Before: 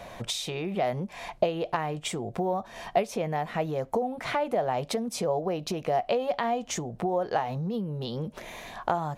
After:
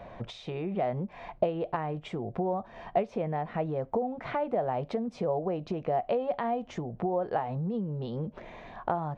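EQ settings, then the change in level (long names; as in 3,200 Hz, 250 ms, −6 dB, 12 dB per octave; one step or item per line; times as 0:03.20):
head-to-tape spacing loss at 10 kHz 36 dB
0.0 dB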